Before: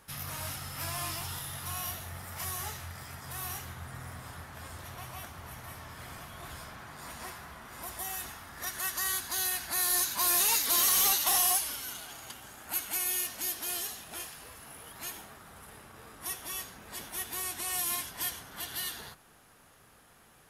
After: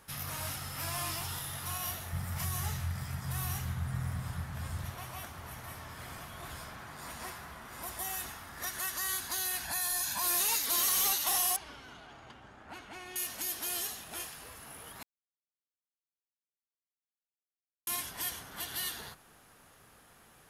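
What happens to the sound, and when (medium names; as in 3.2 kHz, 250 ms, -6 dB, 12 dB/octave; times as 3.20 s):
2.13–4.90 s: resonant low shelf 230 Hz +8.5 dB, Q 1.5
9.64–10.23 s: comb 1.2 ms, depth 63%
11.56–13.16 s: tape spacing loss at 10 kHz 30 dB
15.03–17.87 s: mute
whole clip: peak limiter -24.5 dBFS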